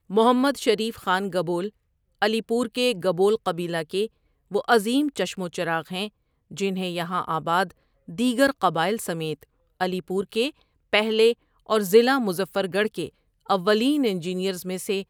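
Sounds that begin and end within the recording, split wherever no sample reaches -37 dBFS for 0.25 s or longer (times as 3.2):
2.22–4.07
4.51–6.08
6.51–7.71
8.08–9.43
9.8–10.5
10.93–11.33
11.69–13.08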